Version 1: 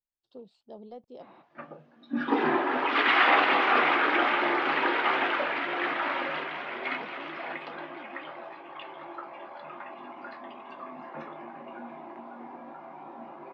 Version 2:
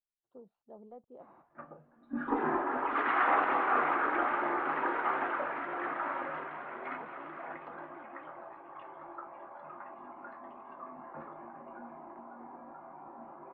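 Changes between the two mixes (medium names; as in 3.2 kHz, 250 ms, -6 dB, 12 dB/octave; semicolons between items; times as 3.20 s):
background: remove band-pass 140–2800 Hz; master: add four-pole ladder low-pass 1.7 kHz, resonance 30%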